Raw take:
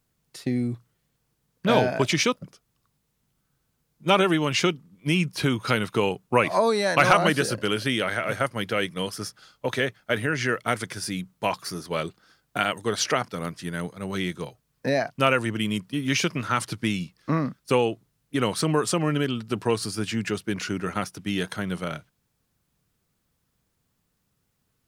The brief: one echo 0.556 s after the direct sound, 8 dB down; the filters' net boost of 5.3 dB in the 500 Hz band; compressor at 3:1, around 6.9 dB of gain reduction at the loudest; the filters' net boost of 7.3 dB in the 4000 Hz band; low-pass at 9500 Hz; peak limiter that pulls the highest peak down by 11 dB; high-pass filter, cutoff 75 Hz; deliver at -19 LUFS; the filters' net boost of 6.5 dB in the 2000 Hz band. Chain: HPF 75 Hz; LPF 9500 Hz; bell 500 Hz +6 dB; bell 2000 Hz +6 dB; bell 4000 Hz +7.5 dB; compressor 3:1, threshold -18 dBFS; limiter -14.5 dBFS; echo 0.556 s -8 dB; gain +7.5 dB

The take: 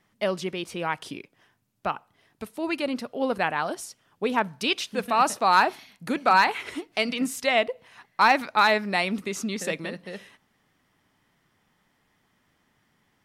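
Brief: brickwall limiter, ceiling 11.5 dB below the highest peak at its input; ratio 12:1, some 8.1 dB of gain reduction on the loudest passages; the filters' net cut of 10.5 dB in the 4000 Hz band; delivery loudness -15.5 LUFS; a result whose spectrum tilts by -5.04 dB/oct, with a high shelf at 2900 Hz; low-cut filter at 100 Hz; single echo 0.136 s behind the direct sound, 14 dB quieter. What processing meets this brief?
HPF 100 Hz; high shelf 2900 Hz -8.5 dB; bell 4000 Hz -7.5 dB; compressor 12:1, threshold -23 dBFS; limiter -25 dBFS; echo 0.136 s -14 dB; gain +20.5 dB

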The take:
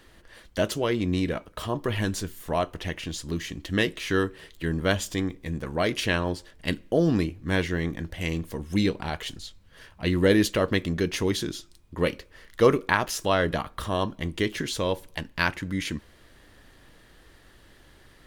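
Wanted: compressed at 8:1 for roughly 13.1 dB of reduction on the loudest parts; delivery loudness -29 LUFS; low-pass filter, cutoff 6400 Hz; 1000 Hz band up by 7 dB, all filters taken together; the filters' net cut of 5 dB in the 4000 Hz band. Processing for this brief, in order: LPF 6400 Hz; bell 1000 Hz +9 dB; bell 4000 Hz -7 dB; compressor 8:1, threshold -25 dBFS; gain +3 dB

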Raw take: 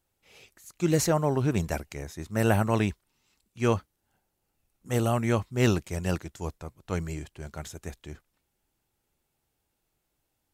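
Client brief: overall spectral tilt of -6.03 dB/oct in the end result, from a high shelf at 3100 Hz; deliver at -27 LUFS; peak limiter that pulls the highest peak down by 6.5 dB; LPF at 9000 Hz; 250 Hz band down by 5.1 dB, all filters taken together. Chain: LPF 9000 Hz; bell 250 Hz -7.5 dB; high shelf 3100 Hz -4.5 dB; gain +5.5 dB; limiter -14 dBFS

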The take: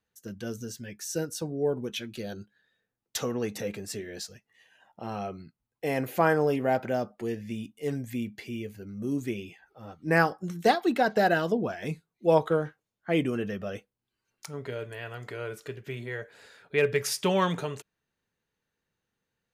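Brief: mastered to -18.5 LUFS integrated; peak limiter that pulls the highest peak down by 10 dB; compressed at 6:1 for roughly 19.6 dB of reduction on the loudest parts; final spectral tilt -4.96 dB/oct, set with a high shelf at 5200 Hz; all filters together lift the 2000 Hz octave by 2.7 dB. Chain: bell 2000 Hz +4.5 dB; high shelf 5200 Hz -7.5 dB; compressor 6:1, threshold -38 dBFS; gain +26 dB; limiter -7.5 dBFS

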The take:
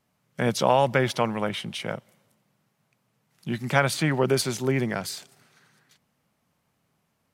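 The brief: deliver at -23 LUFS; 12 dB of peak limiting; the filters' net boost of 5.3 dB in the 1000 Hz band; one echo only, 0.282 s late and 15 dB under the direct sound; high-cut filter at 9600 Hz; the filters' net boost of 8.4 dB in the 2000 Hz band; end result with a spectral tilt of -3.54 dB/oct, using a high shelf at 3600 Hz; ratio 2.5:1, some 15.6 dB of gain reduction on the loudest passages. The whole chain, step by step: LPF 9600 Hz; bell 1000 Hz +4.5 dB; bell 2000 Hz +8 dB; high shelf 3600 Hz +4.5 dB; compressor 2.5:1, threshold -35 dBFS; limiter -26 dBFS; echo 0.282 s -15 dB; gain +14.5 dB

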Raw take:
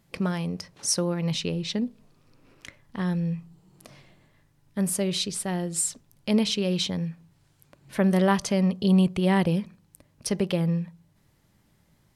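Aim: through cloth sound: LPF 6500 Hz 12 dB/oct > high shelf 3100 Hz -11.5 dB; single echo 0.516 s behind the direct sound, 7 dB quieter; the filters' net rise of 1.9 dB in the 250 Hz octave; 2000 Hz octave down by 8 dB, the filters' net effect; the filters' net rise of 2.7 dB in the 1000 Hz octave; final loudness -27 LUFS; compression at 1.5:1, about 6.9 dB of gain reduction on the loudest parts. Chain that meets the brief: bell 250 Hz +3 dB; bell 1000 Hz +6 dB; bell 2000 Hz -8 dB; compressor 1.5:1, threshold -34 dBFS; LPF 6500 Hz 12 dB/oct; high shelf 3100 Hz -11.5 dB; echo 0.516 s -7 dB; gain +4 dB

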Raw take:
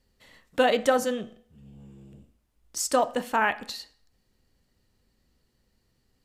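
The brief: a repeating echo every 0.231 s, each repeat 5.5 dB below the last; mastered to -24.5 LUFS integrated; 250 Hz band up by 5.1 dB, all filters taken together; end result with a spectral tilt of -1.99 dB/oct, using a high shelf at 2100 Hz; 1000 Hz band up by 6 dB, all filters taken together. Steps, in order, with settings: bell 250 Hz +5 dB; bell 1000 Hz +6.5 dB; high shelf 2100 Hz +6 dB; feedback echo 0.231 s, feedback 53%, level -5.5 dB; gain -3 dB

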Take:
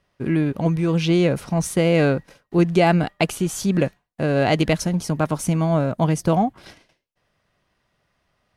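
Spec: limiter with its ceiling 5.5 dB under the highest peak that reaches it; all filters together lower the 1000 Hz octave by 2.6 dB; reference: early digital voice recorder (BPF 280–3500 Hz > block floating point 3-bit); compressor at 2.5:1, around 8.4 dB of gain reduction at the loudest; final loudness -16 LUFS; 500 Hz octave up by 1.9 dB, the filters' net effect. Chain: bell 500 Hz +5 dB; bell 1000 Hz -7 dB; compressor 2.5:1, threshold -23 dBFS; limiter -16.5 dBFS; BPF 280–3500 Hz; block floating point 3-bit; gain +14 dB

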